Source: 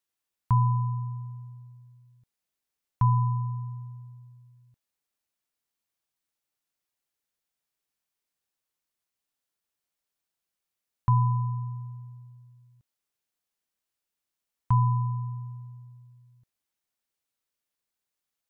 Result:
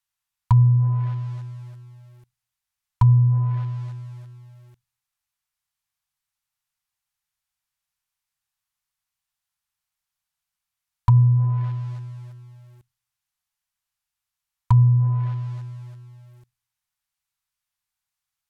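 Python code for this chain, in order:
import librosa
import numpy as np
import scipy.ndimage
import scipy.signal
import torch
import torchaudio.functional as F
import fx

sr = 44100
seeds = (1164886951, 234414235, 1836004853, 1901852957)

p1 = scipy.signal.sosfilt(scipy.signal.cheby1(2, 1.0, [140.0, 900.0], 'bandstop', fs=sr, output='sos'), x)
p2 = fx.low_shelf(p1, sr, hz=80.0, db=5.0)
p3 = fx.rev_schroeder(p2, sr, rt60_s=0.44, comb_ms=33, drr_db=17.0)
p4 = fx.quant_companded(p3, sr, bits=4)
p5 = p3 + (p4 * librosa.db_to_amplitude(-8.0))
p6 = fx.env_lowpass_down(p5, sr, base_hz=310.0, full_db=-16.0)
y = p6 * librosa.db_to_amplitude(3.0)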